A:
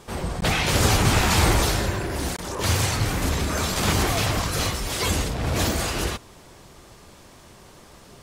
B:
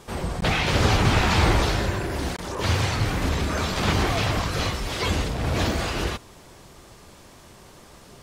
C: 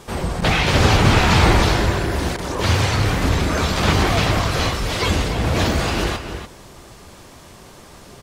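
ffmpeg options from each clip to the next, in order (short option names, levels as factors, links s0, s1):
-filter_complex "[0:a]acrossover=split=5200[s0][s1];[s1]acompressor=threshold=0.00631:ratio=4:attack=1:release=60[s2];[s0][s2]amix=inputs=2:normalize=0"
-filter_complex "[0:a]asplit=2[s0][s1];[s1]adelay=291.5,volume=0.398,highshelf=f=4000:g=-6.56[s2];[s0][s2]amix=inputs=2:normalize=0,volume=1.78"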